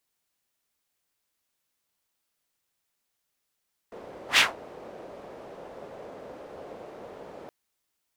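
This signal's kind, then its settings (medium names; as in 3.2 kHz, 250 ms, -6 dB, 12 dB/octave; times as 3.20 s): whoosh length 3.57 s, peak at 0.46 s, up 0.11 s, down 0.18 s, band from 530 Hz, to 2.9 kHz, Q 2.1, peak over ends 26.5 dB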